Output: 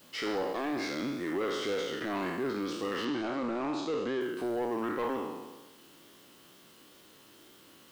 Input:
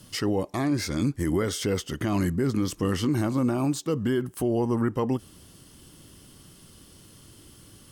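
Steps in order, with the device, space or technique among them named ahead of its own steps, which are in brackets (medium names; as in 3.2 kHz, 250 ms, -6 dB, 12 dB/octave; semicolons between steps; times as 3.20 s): spectral sustain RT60 1.20 s; tape answering machine (band-pass 360–3100 Hz; saturation -23.5 dBFS, distortion -14 dB; wow and flutter; white noise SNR 27 dB); 3.05–4.21 s: low-pass 7.2 kHz 24 dB/octave; peaking EQ 3.9 kHz +3.5 dB 0.21 oct; trim -2.5 dB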